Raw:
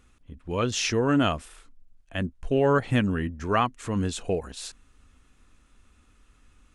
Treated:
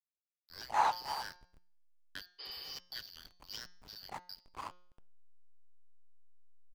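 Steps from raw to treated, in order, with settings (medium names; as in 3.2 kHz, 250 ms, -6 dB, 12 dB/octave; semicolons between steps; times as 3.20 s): four frequency bands reordered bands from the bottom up 4321; treble shelf 7.9 kHz +8.5 dB; auto-wah 580–1200 Hz, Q 8.5, down, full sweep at -15 dBFS; on a send: delay 315 ms -11 dB; on the sum: hysteresis with a dead band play -48.5 dBFS; de-hum 179 Hz, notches 37; spectral replace 2.42–2.72 s, 310–5300 Hz after; trim +15 dB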